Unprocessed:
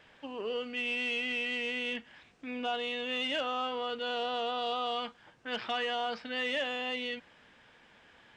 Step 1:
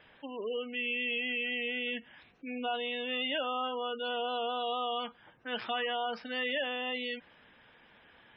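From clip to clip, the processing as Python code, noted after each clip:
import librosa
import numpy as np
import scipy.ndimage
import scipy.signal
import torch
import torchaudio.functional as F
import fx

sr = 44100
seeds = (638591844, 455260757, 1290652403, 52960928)

y = fx.spec_gate(x, sr, threshold_db=-20, keep='strong')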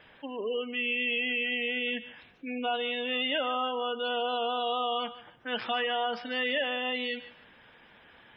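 y = fx.echo_thinned(x, sr, ms=148, feedback_pct=23, hz=420.0, wet_db=-14.5)
y = F.gain(torch.from_numpy(y), 3.5).numpy()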